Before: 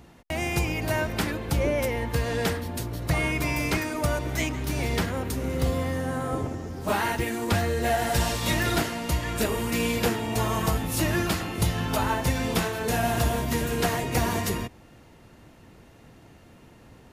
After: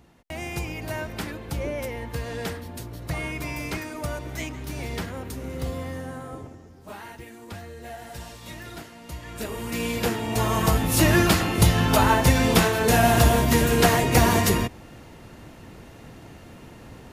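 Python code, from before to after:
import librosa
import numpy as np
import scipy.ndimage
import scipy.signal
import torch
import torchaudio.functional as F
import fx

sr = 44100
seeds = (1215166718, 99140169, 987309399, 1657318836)

y = fx.gain(x, sr, db=fx.line((5.98, -5.0), (6.83, -14.5), (8.89, -14.5), (9.71, -3.0), (11.08, 7.0)))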